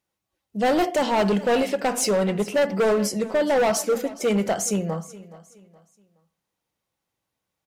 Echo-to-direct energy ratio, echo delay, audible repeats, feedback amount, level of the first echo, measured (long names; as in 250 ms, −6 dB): −18.0 dB, 421 ms, 2, 34%, −18.5 dB